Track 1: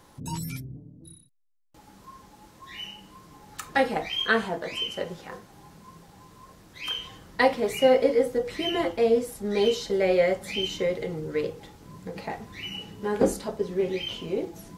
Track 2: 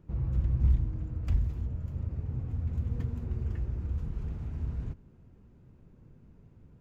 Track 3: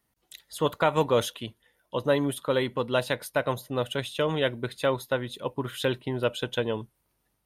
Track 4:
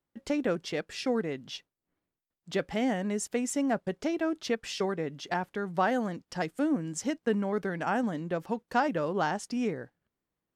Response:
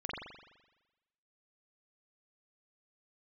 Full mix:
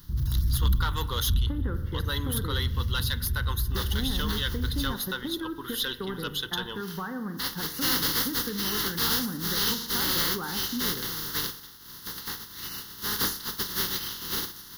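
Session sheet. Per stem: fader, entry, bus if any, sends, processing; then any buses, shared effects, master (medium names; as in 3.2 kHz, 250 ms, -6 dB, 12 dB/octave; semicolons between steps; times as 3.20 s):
0.0 dB, 0.00 s, no send, spectral contrast reduction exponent 0.25; auto duck -12 dB, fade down 0.35 s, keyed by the third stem
-2.5 dB, 0.00 s, no send, tilt EQ -2 dB/octave
-2.0 dB, 0.00 s, send -20 dB, tilt EQ +4 dB/octave
+0.5 dB, 1.20 s, send -9.5 dB, low-pass 1.8 kHz 24 dB/octave; compression, threshold -28 dBFS, peak gain reduction 8 dB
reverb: on, RT60 1.1 s, pre-delay 42 ms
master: treble shelf 4.3 kHz +6.5 dB; saturation -17.5 dBFS, distortion -11 dB; static phaser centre 2.4 kHz, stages 6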